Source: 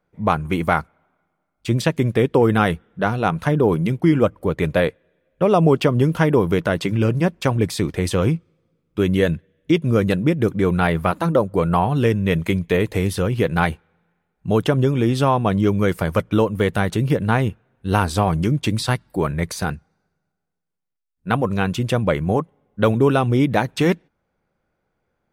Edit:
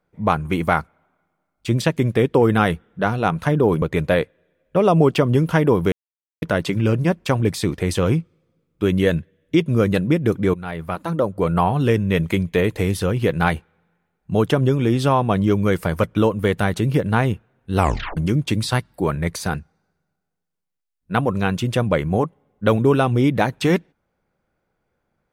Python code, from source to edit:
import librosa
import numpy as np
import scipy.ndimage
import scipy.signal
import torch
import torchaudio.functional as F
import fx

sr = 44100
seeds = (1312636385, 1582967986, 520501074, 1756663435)

y = fx.edit(x, sr, fx.cut(start_s=3.82, length_s=0.66),
    fx.insert_silence(at_s=6.58, length_s=0.5),
    fx.fade_in_from(start_s=10.7, length_s=1.04, floor_db=-16.5),
    fx.tape_stop(start_s=17.93, length_s=0.4), tone=tone)